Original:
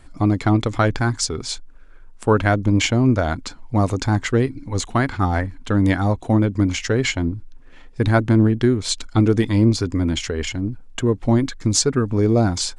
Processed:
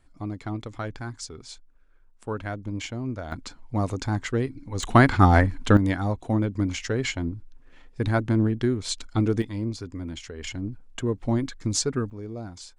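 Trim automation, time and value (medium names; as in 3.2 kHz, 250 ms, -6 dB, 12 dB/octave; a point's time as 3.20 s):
-15 dB
from 3.32 s -7.5 dB
from 4.83 s +3.5 dB
from 5.77 s -7 dB
from 9.42 s -14 dB
from 10.44 s -7.5 dB
from 12.10 s -19.5 dB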